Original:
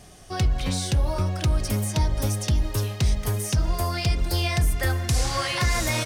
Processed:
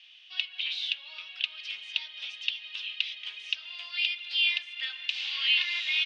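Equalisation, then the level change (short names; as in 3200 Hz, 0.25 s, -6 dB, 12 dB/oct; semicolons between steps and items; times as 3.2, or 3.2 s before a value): resonant high-pass 2700 Hz, resonance Q 5; synth low-pass 3500 Hz, resonance Q 3.4; air absorption 120 m; -8.5 dB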